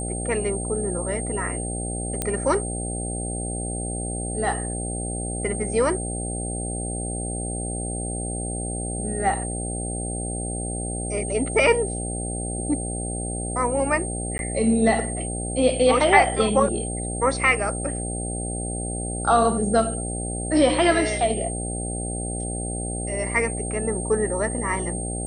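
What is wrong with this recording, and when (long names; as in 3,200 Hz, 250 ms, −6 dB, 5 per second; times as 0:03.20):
mains buzz 60 Hz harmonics 13 −30 dBFS
whistle 8,600 Hz −31 dBFS
0:02.22: click −9 dBFS
0:14.38–0:14.39: drop-out 11 ms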